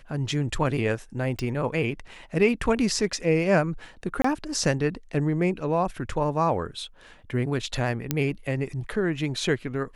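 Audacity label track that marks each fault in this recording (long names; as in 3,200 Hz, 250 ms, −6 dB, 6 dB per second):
1.390000	1.390000	click −16 dBFS
4.220000	4.240000	drop-out 24 ms
8.110000	8.110000	click −8 dBFS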